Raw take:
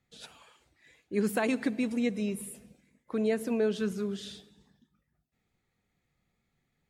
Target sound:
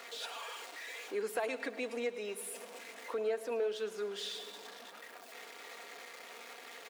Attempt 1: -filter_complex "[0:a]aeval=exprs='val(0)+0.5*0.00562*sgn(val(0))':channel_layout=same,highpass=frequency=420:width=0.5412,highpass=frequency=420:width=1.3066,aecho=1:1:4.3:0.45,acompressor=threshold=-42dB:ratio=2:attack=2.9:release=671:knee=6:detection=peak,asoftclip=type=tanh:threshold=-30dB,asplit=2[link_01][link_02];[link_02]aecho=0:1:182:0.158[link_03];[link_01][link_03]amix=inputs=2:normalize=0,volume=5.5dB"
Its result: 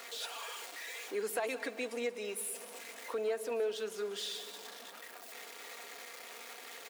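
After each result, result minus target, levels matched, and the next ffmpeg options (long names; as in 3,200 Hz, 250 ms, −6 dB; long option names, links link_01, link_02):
echo 75 ms late; 8,000 Hz band +4.0 dB
-filter_complex "[0:a]aeval=exprs='val(0)+0.5*0.00562*sgn(val(0))':channel_layout=same,highpass=frequency=420:width=0.5412,highpass=frequency=420:width=1.3066,aecho=1:1:4.3:0.45,acompressor=threshold=-42dB:ratio=2:attack=2.9:release=671:knee=6:detection=peak,asoftclip=type=tanh:threshold=-30dB,asplit=2[link_01][link_02];[link_02]aecho=0:1:107:0.158[link_03];[link_01][link_03]amix=inputs=2:normalize=0,volume=5.5dB"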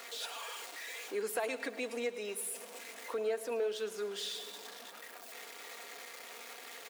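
8,000 Hz band +4.0 dB
-filter_complex "[0:a]aeval=exprs='val(0)+0.5*0.00562*sgn(val(0))':channel_layout=same,highpass=frequency=420:width=0.5412,highpass=frequency=420:width=1.3066,highshelf=frequency=6100:gain=-8.5,aecho=1:1:4.3:0.45,acompressor=threshold=-42dB:ratio=2:attack=2.9:release=671:knee=6:detection=peak,asoftclip=type=tanh:threshold=-30dB,asplit=2[link_01][link_02];[link_02]aecho=0:1:107:0.158[link_03];[link_01][link_03]amix=inputs=2:normalize=0,volume=5.5dB"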